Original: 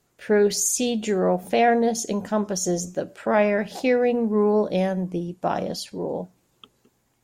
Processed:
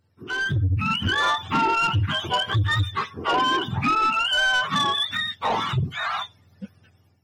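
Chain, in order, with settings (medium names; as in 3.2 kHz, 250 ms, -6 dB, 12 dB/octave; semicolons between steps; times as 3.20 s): spectrum inverted on a logarithmic axis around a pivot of 800 Hz; compression 10:1, threshold -21 dBFS, peak gain reduction 12 dB; saturation -23 dBFS, distortion -14 dB; level rider gain up to 9 dB; trim -2 dB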